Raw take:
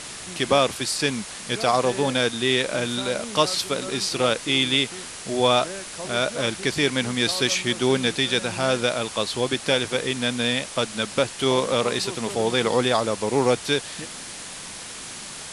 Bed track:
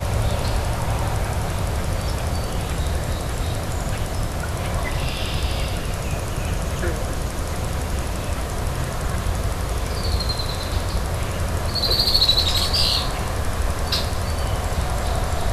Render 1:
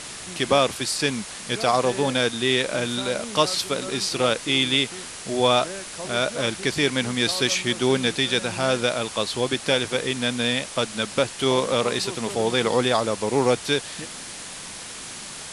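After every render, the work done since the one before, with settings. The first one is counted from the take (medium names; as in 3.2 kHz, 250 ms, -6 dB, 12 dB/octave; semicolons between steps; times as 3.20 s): no audible change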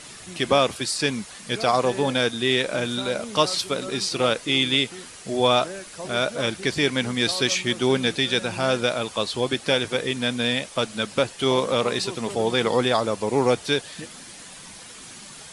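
noise reduction 8 dB, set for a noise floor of -37 dBFS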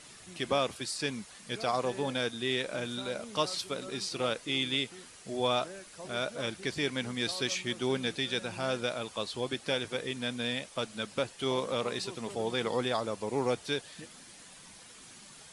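trim -10 dB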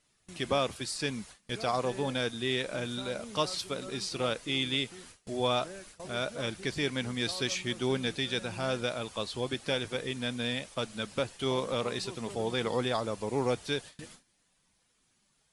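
gate with hold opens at -38 dBFS; bass shelf 82 Hz +11.5 dB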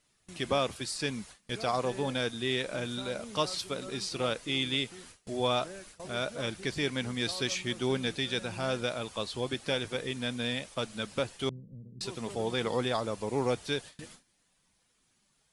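11.49–12.01 s: four-pole ladder low-pass 210 Hz, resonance 35%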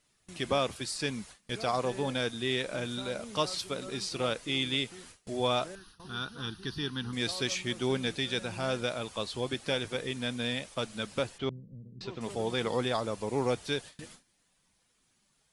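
5.75–7.13 s: static phaser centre 2.2 kHz, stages 6; 11.38–12.21 s: distance through air 190 m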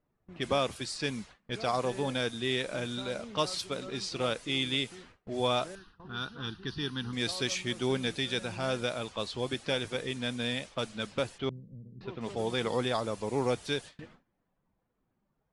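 level-controlled noise filter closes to 870 Hz, open at -29.5 dBFS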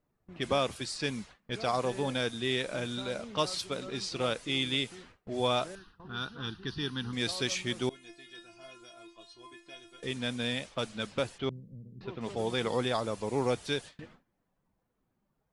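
7.89–10.03 s: inharmonic resonator 340 Hz, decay 0.29 s, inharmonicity 0.002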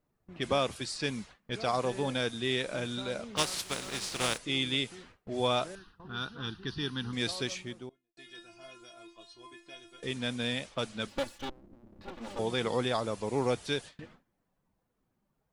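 3.36–4.37 s: spectral contrast reduction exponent 0.44; 7.21–8.17 s: studio fade out; 11.07–12.39 s: comb filter that takes the minimum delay 3.5 ms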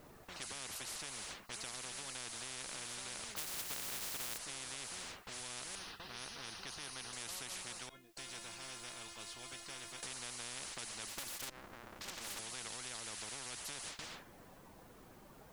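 compression, threshold -39 dBFS, peak gain reduction 15 dB; spectrum-flattening compressor 10:1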